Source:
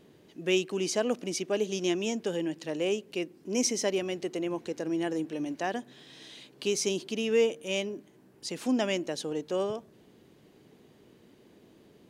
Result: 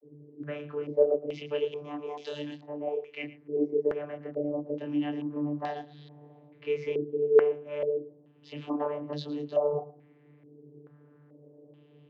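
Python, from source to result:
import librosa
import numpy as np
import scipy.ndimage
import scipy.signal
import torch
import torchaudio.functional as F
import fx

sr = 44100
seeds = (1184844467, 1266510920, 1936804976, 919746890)

p1 = fx.tilt_eq(x, sr, slope=4.0, at=(1.81, 3.22))
p2 = fx.chorus_voices(p1, sr, voices=4, hz=0.59, base_ms=25, depth_ms=5.0, mix_pct=40)
p3 = p2 + fx.echo_single(p2, sr, ms=112, db=-17.0, dry=0)
p4 = fx.vocoder(p3, sr, bands=32, carrier='saw', carrier_hz=147.0)
y = fx.filter_held_lowpass(p4, sr, hz=2.3, low_hz=390.0, high_hz=4200.0)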